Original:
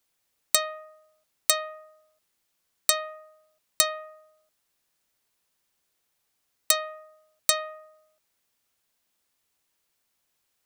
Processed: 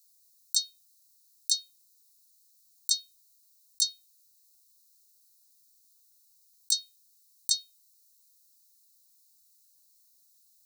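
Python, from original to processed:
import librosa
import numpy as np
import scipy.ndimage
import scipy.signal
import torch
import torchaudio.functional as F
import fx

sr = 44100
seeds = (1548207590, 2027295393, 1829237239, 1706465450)

y = scipy.signal.sosfilt(scipy.signal.cheby1(5, 1.0, [210.0, 4000.0], 'bandstop', fs=sr, output='sos'), x)
y = fx.tilt_eq(y, sr, slope=2.5)
y = fx.over_compress(y, sr, threshold_db=-18.0, ratio=-0.5)
y = y * librosa.db_to_amplitude(-3.5)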